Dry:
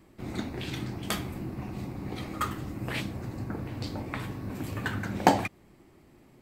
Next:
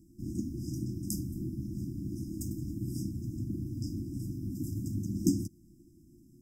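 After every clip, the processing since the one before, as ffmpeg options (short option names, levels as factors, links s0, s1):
-af "afftfilt=real='re*(1-between(b*sr/4096,360,4900))':imag='im*(1-between(b*sr/4096,360,4900))':win_size=4096:overlap=0.75"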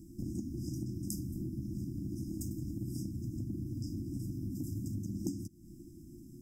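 -af "acompressor=threshold=0.00631:ratio=4,volume=2.24"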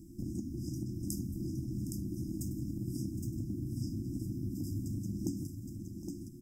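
-af "aecho=1:1:763|816:0.168|0.531"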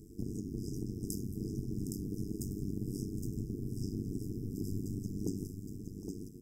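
-af "tremolo=f=98:d=0.947,volume=1.5"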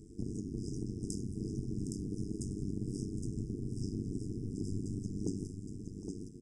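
-af "aresample=22050,aresample=44100"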